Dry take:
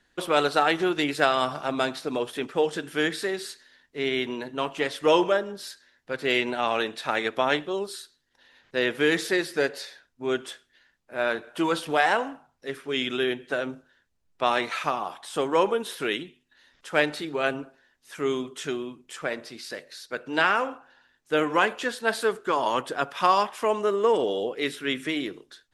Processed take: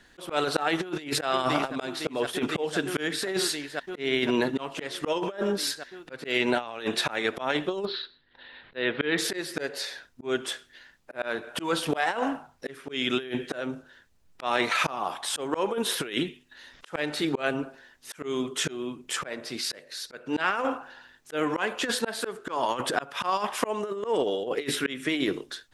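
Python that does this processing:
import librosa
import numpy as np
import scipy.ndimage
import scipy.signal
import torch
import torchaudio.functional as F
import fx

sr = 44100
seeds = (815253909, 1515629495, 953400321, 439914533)

y = fx.echo_throw(x, sr, start_s=0.81, length_s=0.43, ms=510, feedback_pct=80, wet_db=-12.5)
y = fx.ellip_lowpass(y, sr, hz=4000.0, order=4, stop_db=50, at=(7.85, 9.18))
y = fx.auto_swell(y, sr, attack_ms=436.0)
y = fx.over_compress(y, sr, threshold_db=-33.0, ratio=-0.5)
y = y * librosa.db_to_amplitude(7.5)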